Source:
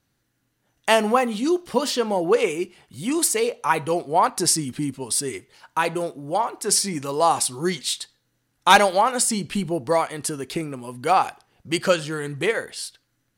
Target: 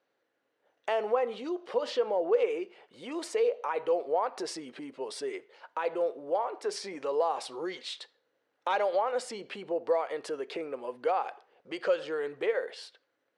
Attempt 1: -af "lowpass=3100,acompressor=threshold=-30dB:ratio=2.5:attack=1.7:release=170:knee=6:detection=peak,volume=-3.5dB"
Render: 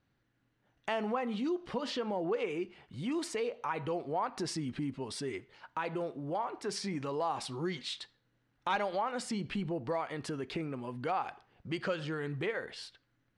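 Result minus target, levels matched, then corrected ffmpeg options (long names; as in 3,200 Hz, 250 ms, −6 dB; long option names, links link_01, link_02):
500 Hz band −3.0 dB
-af "lowpass=3100,acompressor=threshold=-30dB:ratio=2.5:attack=1.7:release=170:knee=6:detection=peak,highpass=frequency=490:width_type=q:width=3,volume=-3.5dB"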